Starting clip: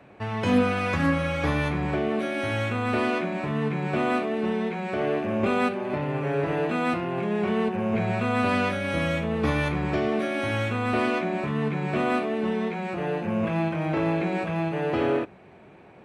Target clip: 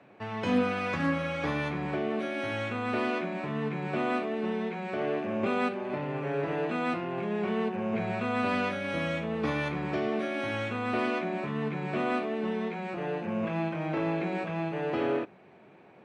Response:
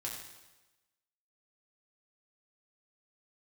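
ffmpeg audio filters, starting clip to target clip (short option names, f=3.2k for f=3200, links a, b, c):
-af "highpass=140,lowpass=7k,volume=-4.5dB"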